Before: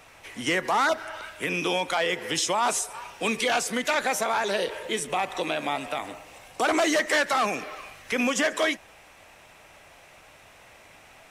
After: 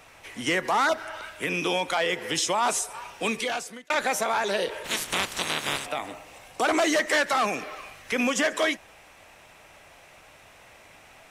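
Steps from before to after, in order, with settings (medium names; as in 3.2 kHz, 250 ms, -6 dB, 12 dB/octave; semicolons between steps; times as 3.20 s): 3.22–3.90 s: fade out; 4.84–5.85 s: spectral peaks clipped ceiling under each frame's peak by 29 dB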